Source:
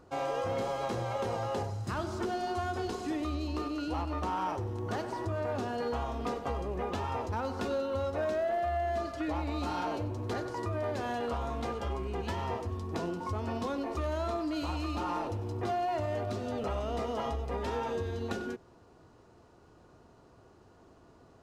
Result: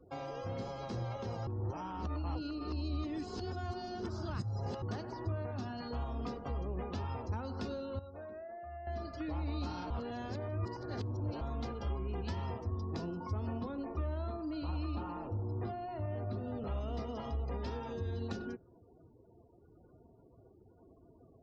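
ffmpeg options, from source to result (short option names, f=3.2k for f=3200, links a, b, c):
-filter_complex "[0:a]asettb=1/sr,asplit=3[a][b][c];[a]atrim=end=5.514[d];[b]atrim=start=5.51:end=5.91,asetpts=PTS-STARTPTS,afade=t=in:d=0.004:c=qsin,afade=t=out:st=0.396:d=0.004:c=qsin,equalizer=f=460:t=o:w=0.45:g=-12.5[e];[c]atrim=start=5.906[f];[d][e]acrossfade=d=0.004:c1=hsin:c2=qsin[g];[g][f]acrossfade=d=0.004:c1=qsin:c2=hsin,asettb=1/sr,asplit=3[h][i][j];[h]atrim=end=13.474[k];[i]atrim=start=13.47:end=16.67,asetpts=PTS-STARTPTS,afade=t=in:d=0.004:c=qsin,afade=t=out:st=3.196:d=0.004:c=qsin,highshelf=f=3.9k:g=-11[l];[j]atrim=start=16.666[m];[k][l]acrossfade=d=0.004:c1=hsin:c2=qsin[n];[n][m]acrossfade=d=0.004:c1=qsin:c2=hsin,asplit=7[o][p][q][r][s][t][u];[o]atrim=end=1.472[v];[p]atrim=start=1.468:end=4.822,asetpts=PTS-STARTPTS,areverse[w];[q]atrim=start=4.818:end=7.992[x];[r]atrim=start=7.988:end=8.872,asetpts=PTS-STARTPTS,volume=-11.5dB[y];[s]atrim=start=8.868:end=9.902[z];[t]atrim=start=9.898:end=11.412,asetpts=PTS-STARTPTS,areverse[aa];[u]atrim=start=11.408[ab];[v][w]acrossfade=d=0.004:c1=hsin:c2=hsin[ac];[ac][x]acrossfade=d=0.004:c1=hsin:c2=hsin[ad];[ad][y]acrossfade=d=0.004:c1=hsin:c2=hsin[ae];[ae][z]acrossfade=d=0.004:c1=hsin:c2=hsin[af];[af][aa]acrossfade=d=0.004:c1=hsin:c2=hsin[ag];[ag][ab]acrossfade=d=0.004:c1=hsin:c2=hsin,afftdn=nr=36:nf=-53,equalizer=f=5k:w=1.8:g=10,acrossover=split=250[ah][ai];[ai]acompressor=threshold=-47dB:ratio=2.5[aj];[ah][aj]amix=inputs=2:normalize=0"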